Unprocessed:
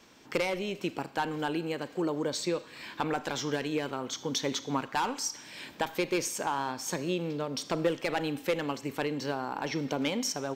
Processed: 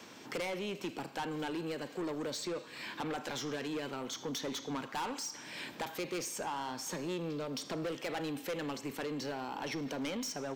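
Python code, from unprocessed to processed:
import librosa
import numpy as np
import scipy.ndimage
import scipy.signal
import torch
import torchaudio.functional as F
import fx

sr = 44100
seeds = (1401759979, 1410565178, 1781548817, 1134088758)

y = scipy.signal.sosfilt(scipy.signal.butter(2, 110.0, 'highpass', fs=sr, output='sos'), x)
y = 10.0 ** (-31.0 / 20.0) * np.tanh(y / 10.0 ** (-31.0 / 20.0))
y = fx.band_squash(y, sr, depth_pct=40)
y = y * 10.0 ** (-2.0 / 20.0)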